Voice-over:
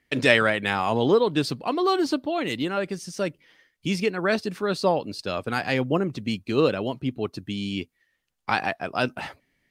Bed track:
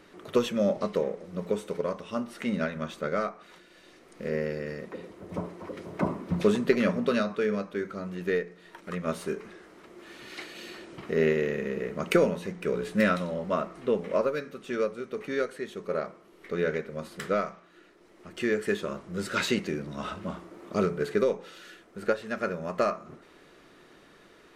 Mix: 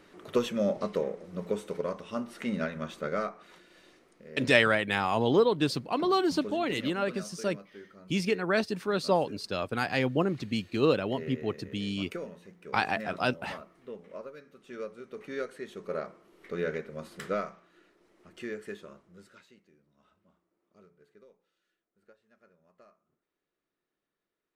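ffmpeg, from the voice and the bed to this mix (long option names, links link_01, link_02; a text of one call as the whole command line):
ffmpeg -i stem1.wav -i stem2.wav -filter_complex "[0:a]adelay=4250,volume=-3.5dB[link_01];[1:a]volume=10dB,afade=type=out:start_time=3.8:duration=0.45:silence=0.199526,afade=type=in:start_time=14.39:duration=1.42:silence=0.237137,afade=type=out:start_time=17.32:duration=2.11:silence=0.0354813[link_02];[link_01][link_02]amix=inputs=2:normalize=0" out.wav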